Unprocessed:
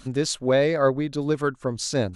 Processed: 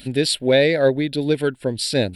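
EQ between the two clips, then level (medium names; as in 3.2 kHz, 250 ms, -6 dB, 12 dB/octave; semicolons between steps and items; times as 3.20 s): tilt EQ +2 dB/octave; static phaser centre 2.8 kHz, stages 4; +8.5 dB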